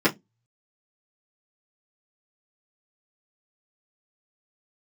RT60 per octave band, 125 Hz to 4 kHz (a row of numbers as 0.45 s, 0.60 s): 0.40 s, 0.25 s, 0.20 s, 0.15 s, 0.15 s, 0.15 s